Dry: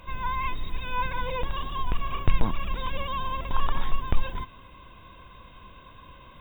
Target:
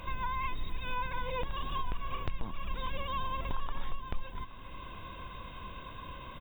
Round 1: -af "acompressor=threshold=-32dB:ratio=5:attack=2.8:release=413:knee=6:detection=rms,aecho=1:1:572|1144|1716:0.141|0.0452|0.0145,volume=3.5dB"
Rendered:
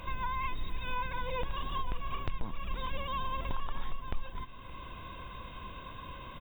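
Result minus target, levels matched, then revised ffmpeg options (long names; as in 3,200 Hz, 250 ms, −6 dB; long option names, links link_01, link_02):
echo 251 ms early
-af "acompressor=threshold=-32dB:ratio=5:attack=2.8:release=413:knee=6:detection=rms,aecho=1:1:823|1646|2469:0.141|0.0452|0.0145,volume=3.5dB"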